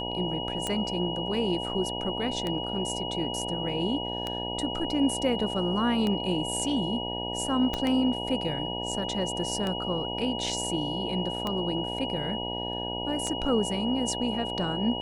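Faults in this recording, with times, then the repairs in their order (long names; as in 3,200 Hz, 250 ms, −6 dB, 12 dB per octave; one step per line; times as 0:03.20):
mains buzz 60 Hz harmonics 16 −35 dBFS
scratch tick 33 1/3 rpm −16 dBFS
whistle 2,900 Hz −34 dBFS
0:07.74: click −15 dBFS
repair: click removal
hum removal 60 Hz, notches 16
notch filter 2,900 Hz, Q 30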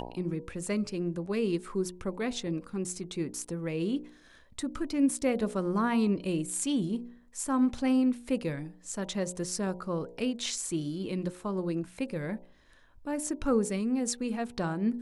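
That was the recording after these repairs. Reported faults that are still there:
0:07.74: click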